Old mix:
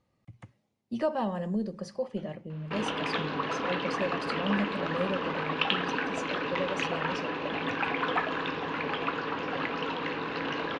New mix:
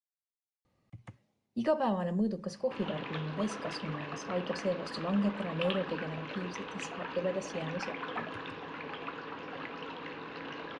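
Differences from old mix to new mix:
speech: entry +0.65 s; background -9.5 dB

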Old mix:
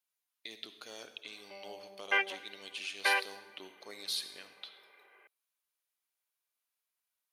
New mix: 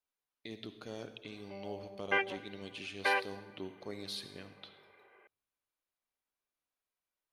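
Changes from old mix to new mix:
speech: remove high-pass 450 Hz 6 dB/octave; master: add tilt EQ -3 dB/octave

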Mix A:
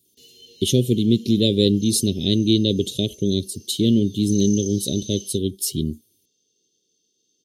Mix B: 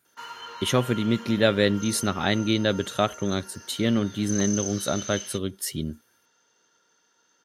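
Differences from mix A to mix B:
speech -7.0 dB; master: remove elliptic band-stop 410–3400 Hz, stop band 70 dB

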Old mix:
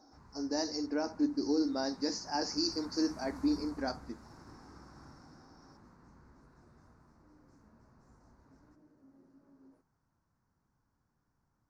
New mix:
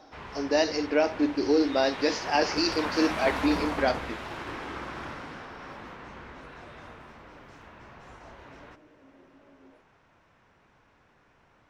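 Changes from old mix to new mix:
first sound +10.5 dB; master: remove FFT filter 150 Hz 0 dB, 270 Hz -3 dB, 410 Hz -11 dB, 610 Hz -14 dB, 900 Hz -8 dB, 1.5 kHz -11 dB, 3.2 kHz -30 dB, 4.5 kHz -5 dB, 6.7 kHz -1 dB, 12 kHz -4 dB

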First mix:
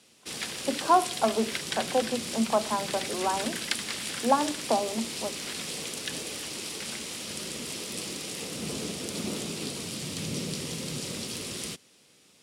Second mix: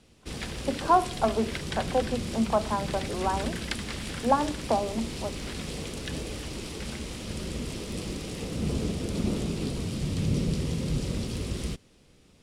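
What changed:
background: add tilt EQ -2.5 dB/octave; master: remove high-pass 130 Hz 12 dB/octave

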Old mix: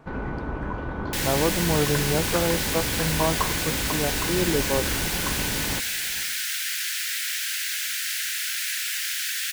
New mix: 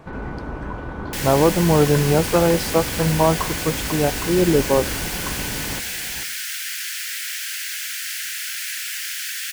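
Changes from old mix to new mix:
speech +8.0 dB; second sound: add peaking EQ 3.8 kHz -3.5 dB 0.21 oct

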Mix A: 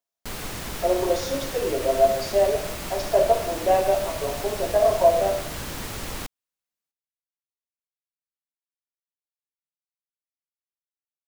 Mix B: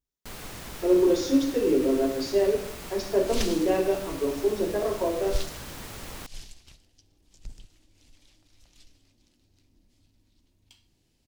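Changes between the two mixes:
speech: remove resonant high-pass 670 Hz, resonance Q 5.8; first sound -7.0 dB; second sound: unmuted

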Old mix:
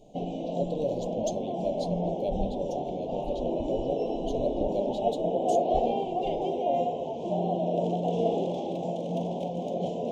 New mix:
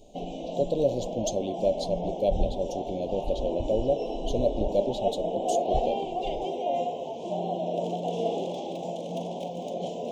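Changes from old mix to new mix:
speech +6.5 dB; background: add tilt EQ +2 dB/octave

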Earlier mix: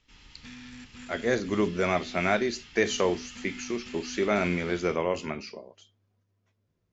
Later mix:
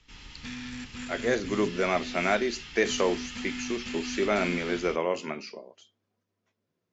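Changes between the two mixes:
speech: add high-pass 200 Hz 12 dB/octave; background +6.5 dB

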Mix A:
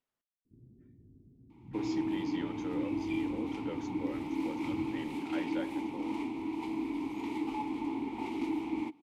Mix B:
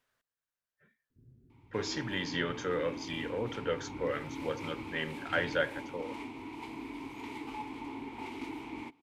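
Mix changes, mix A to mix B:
speech +11.5 dB; first sound: entry +0.65 s; master: add graphic EQ with 31 bands 200 Hz -10 dB, 315 Hz -11 dB, 800 Hz -5 dB, 1.6 kHz +8 dB

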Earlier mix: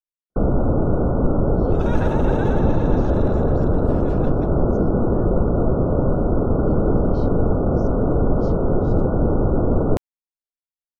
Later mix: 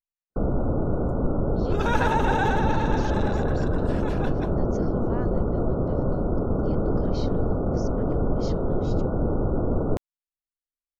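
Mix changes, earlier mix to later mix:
speech +10.5 dB; first sound -6.0 dB; second sound +7.0 dB

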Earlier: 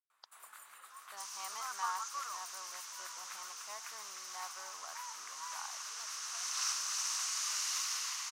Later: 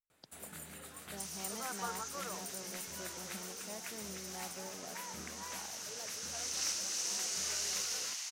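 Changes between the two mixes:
first sound +7.5 dB; master: remove resonant high-pass 1.1 kHz, resonance Q 5.2

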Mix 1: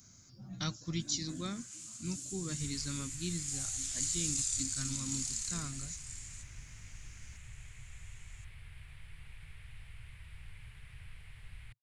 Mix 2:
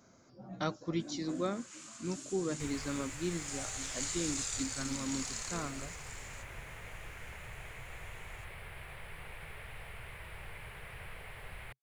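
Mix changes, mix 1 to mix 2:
speech -8.0 dB; second sound: remove distance through air 97 m; master: remove FFT filter 110 Hz 0 dB, 540 Hz -23 dB, 10 kHz +8 dB

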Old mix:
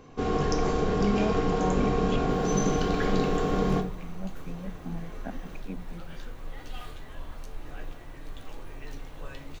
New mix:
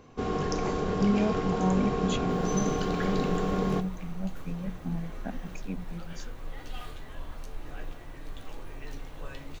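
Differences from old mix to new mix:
speech: remove band-pass 190–2600 Hz; first sound: send -9.0 dB

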